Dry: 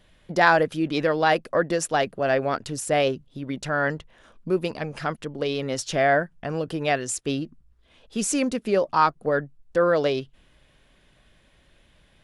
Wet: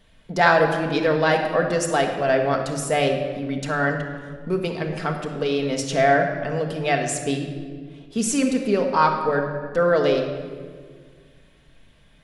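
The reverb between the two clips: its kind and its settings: simulated room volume 2300 m³, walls mixed, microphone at 1.6 m

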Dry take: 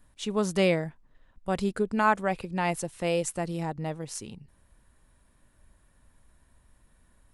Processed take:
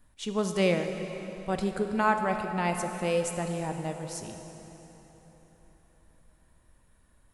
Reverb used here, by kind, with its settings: plate-style reverb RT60 4.1 s, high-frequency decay 0.75×, DRR 5 dB; trim -2 dB

